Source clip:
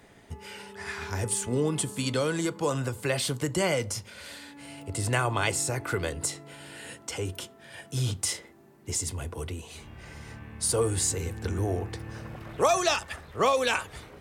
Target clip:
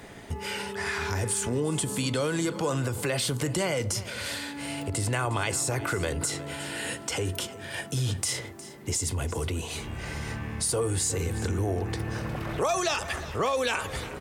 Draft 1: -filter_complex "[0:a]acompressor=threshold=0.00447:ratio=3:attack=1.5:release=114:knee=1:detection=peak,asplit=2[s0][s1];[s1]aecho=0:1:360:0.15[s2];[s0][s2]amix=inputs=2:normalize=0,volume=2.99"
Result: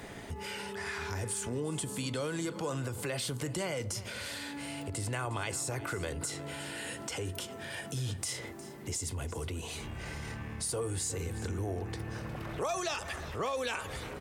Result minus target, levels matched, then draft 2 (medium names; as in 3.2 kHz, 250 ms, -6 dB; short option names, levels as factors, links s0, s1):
compression: peak gain reduction +7.5 dB
-filter_complex "[0:a]acompressor=threshold=0.0158:ratio=3:attack=1.5:release=114:knee=1:detection=peak,asplit=2[s0][s1];[s1]aecho=0:1:360:0.15[s2];[s0][s2]amix=inputs=2:normalize=0,volume=2.99"